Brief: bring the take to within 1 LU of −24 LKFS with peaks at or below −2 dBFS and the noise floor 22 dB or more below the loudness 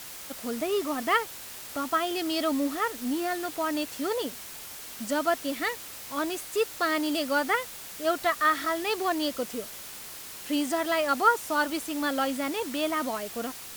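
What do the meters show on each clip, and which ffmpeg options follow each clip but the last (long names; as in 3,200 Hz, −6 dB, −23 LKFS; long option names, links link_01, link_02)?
background noise floor −42 dBFS; target noise floor −51 dBFS; integrated loudness −28.5 LKFS; sample peak −9.0 dBFS; target loudness −24.0 LKFS
→ -af "afftdn=noise_reduction=9:noise_floor=-42"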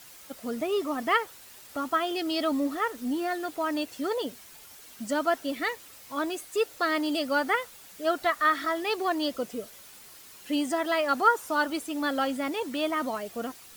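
background noise floor −50 dBFS; target noise floor −51 dBFS
→ -af "afftdn=noise_reduction=6:noise_floor=-50"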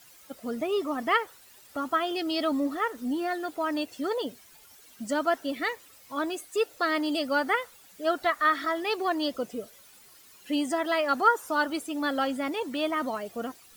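background noise floor −54 dBFS; integrated loudness −28.5 LKFS; sample peak −9.5 dBFS; target loudness −24.0 LKFS
→ -af "volume=4.5dB"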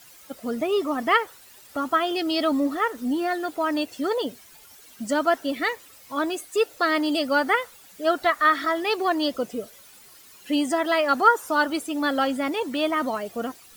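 integrated loudness −24.0 LKFS; sample peak −5.0 dBFS; background noise floor −50 dBFS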